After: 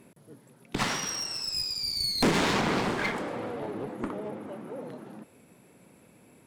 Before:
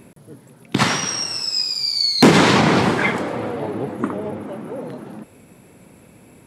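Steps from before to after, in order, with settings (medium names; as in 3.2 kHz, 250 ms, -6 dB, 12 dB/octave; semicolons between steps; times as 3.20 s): bass shelf 84 Hz -9.5 dB; hum notches 50/100 Hz; one-sided clip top -21.5 dBFS; trim -8.5 dB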